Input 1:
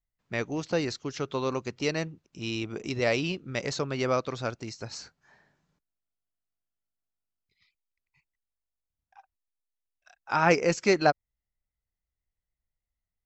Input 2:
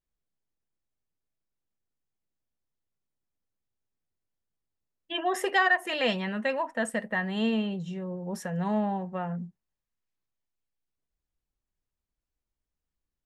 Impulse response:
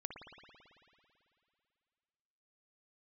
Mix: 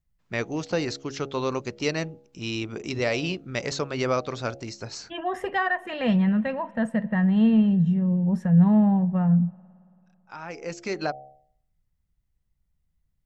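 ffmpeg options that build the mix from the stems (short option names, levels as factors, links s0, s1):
-filter_complex "[0:a]bandreject=f=68.82:t=h:w=4,bandreject=f=137.64:t=h:w=4,bandreject=f=206.46:t=h:w=4,bandreject=f=275.28:t=h:w=4,bandreject=f=344.1:t=h:w=4,bandreject=f=412.92:t=h:w=4,bandreject=f=481.74:t=h:w=4,bandreject=f=550.56:t=h:w=4,bandreject=f=619.38:t=h:w=4,bandreject=f=688.2:t=h:w=4,bandreject=f=757.02:t=h:w=4,bandreject=f=825.84:t=h:w=4,alimiter=limit=0.158:level=0:latency=1:release=189,volume=1.33[s0];[1:a]lowpass=f=1200:p=1,lowshelf=f=230:t=q:w=1.5:g=12.5,volume=1.19,asplit=3[s1][s2][s3];[s2]volume=0.158[s4];[s3]apad=whole_len=584492[s5];[s0][s5]sidechaincompress=threshold=0.00398:ratio=16:attack=16:release=959[s6];[2:a]atrim=start_sample=2205[s7];[s4][s7]afir=irnorm=-1:irlink=0[s8];[s6][s1][s8]amix=inputs=3:normalize=0"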